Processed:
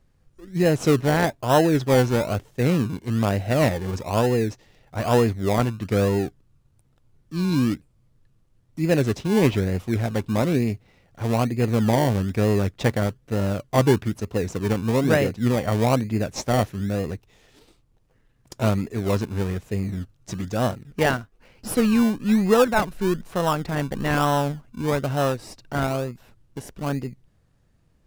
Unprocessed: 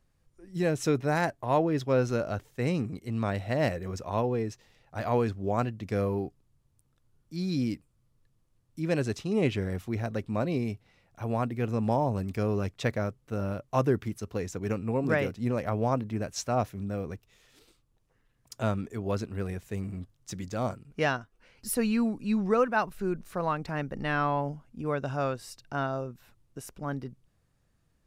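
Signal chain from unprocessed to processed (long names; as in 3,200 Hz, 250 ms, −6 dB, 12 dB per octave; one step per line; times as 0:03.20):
high-shelf EQ 9,200 Hz −6 dB
in parallel at −3.5 dB: sample-and-hold swept by an LFO 27×, swing 60% 1.1 Hz
on the sum: level +4 dB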